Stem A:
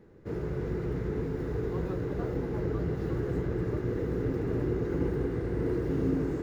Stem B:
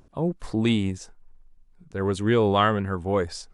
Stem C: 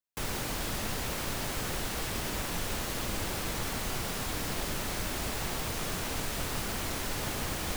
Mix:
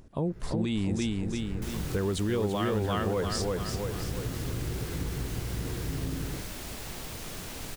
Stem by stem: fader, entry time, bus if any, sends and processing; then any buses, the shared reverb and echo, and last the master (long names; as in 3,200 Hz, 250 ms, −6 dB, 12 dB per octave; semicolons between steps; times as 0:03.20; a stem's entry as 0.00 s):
−5.5 dB, 0.00 s, bus A, no send, no echo send, parametric band 390 Hz −13 dB 1.9 octaves
+2.5 dB, 0.00 s, bus A, no send, echo send −3 dB, no processing
−4.5 dB, 1.45 s, no bus, no send, no echo send, no processing
bus A: 0.0 dB, automatic gain control gain up to 9 dB; brickwall limiter −12 dBFS, peak gain reduction 10.5 dB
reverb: not used
echo: repeating echo 339 ms, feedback 43%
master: parametric band 1,100 Hz −4 dB 2 octaves; downward compressor 2.5 to 1, threshold −29 dBFS, peak gain reduction 9.5 dB